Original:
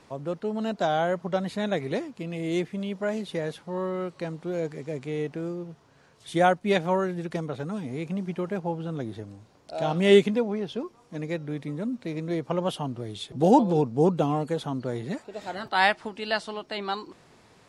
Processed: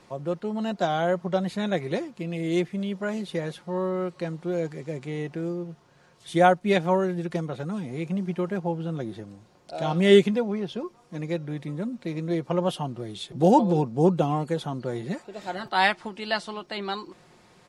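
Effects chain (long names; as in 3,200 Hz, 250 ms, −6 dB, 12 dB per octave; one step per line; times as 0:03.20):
comb filter 5.6 ms, depth 39%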